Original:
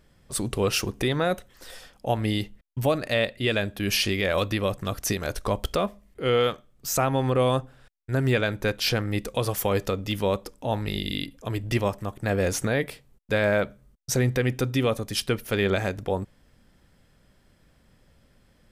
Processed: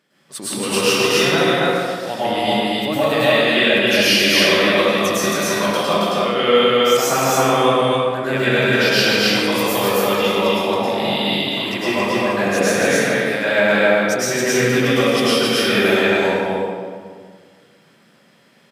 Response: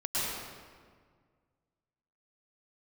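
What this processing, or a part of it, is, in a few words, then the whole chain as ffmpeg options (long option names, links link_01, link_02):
stadium PA: -filter_complex "[0:a]highpass=frequency=170:width=0.5412,highpass=frequency=170:width=1.3066,equalizer=frequency=2600:width_type=o:width=2.6:gain=6,aecho=1:1:174.9|271.1:0.355|0.891[link_01];[1:a]atrim=start_sample=2205[link_02];[link_01][link_02]afir=irnorm=-1:irlink=0,volume=-2.5dB"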